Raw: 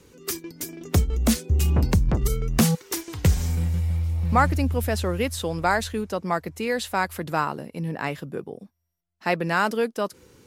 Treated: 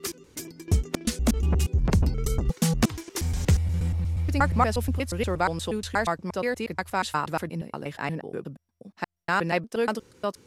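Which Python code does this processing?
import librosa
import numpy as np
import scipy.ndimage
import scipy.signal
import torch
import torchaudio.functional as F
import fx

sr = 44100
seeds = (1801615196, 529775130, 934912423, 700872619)

y = fx.block_reorder(x, sr, ms=119.0, group=3)
y = scipy.signal.sosfilt(scipy.signal.butter(2, 11000.0, 'lowpass', fs=sr, output='sos'), y)
y = y * librosa.db_to_amplitude(-2.0)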